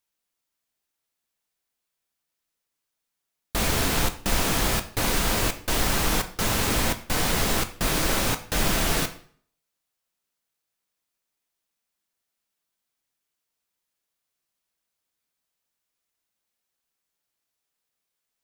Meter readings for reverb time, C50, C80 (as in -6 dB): 0.50 s, 13.5 dB, 17.0 dB